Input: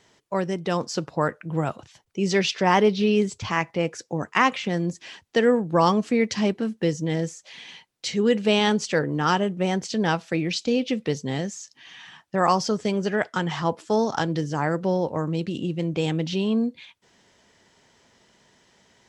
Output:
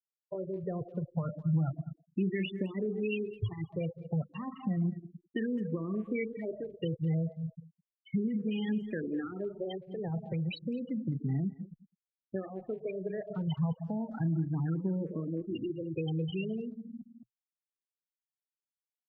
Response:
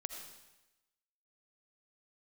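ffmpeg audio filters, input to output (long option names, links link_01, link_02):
-filter_complex "[0:a]asplit=2[link_01][link_02];[link_02]adelay=37,volume=-9dB[link_03];[link_01][link_03]amix=inputs=2:normalize=0,asplit=2[link_04][link_05];[1:a]atrim=start_sample=2205[link_06];[link_05][link_06]afir=irnorm=-1:irlink=0,volume=3.5dB[link_07];[link_04][link_07]amix=inputs=2:normalize=0,alimiter=limit=-7dB:level=0:latency=1:release=18,acrossover=split=460|3100[link_08][link_09][link_10];[link_08]acompressor=threshold=-28dB:ratio=4[link_11];[link_09]acompressor=threshold=-26dB:ratio=4[link_12];[link_10]acompressor=threshold=-38dB:ratio=4[link_13];[link_11][link_12][link_13]amix=inputs=3:normalize=0,afftfilt=real='re*gte(hypot(re,im),0.158)':imag='im*gte(hypot(re,im),0.158)':win_size=1024:overlap=0.75,equalizer=frequency=125:width_type=o:width=1:gain=5,equalizer=frequency=250:width_type=o:width=1:gain=-3,equalizer=frequency=500:width_type=o:width=1:gain=-7,equalizer=frequency=1000:width_type=o:width=1:gain=-5,equalizer=frequency=2000:width_type=o:width=1:gain=-8,equalizer=frequency=4000:width_type=o:width=1:gain=4,asplit=2[link_14][link_15];[link_15]adelay=210,highpass=300,lowpass=3400,asoftclip=type=hard:threshold=-26dB,volume=-18dB[link_16];[link_14][link_16]amix=inputs=2:normalize=0,areverse,acompressor=mode=upward:threshold=-40dB:ratio=2.5,areverse,equalizer=frequency=920:width=1.7:gain=-10.5,asplit=2[link_17][link_18];[link_18]afreqshift=0.32[link_19];[link_17][link_19]amix=inputs=2:normalize=1"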